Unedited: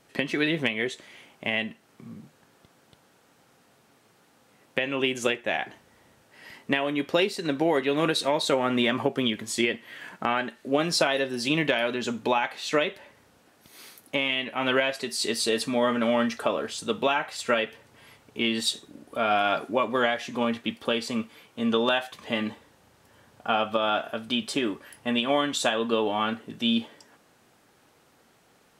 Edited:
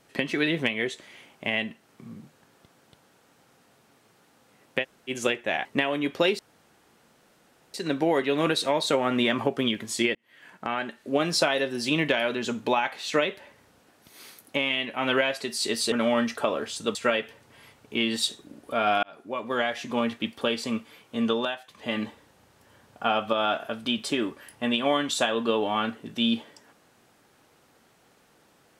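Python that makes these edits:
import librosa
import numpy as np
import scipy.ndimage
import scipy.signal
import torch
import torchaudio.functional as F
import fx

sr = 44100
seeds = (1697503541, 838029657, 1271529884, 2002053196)

y = fx.edit(x, sr, fx.room_tone_fill(start_s=4.83, length_s=0.26, crossfade_s=0.04),
    fx.cut(start_s=5.65, length_s=0.94),
    fx.insert_room_tone(at_s=7.33, length_s=1.35),
    fx.fade_in_span(start_s=9.74, length_s=1.27, curve='qsin'),
    fx.cut(start_s=15.51, length_s=0.43),
    fx.cut(start_s=16.97, length_s=0.42),
    fx.fade_in_span(start_s=19.47, length_s=0.76),
    fx.fade_down_up(start_s=21.68, length_s=0.76, db=-10.0, fade_s=0.34), tone=tone)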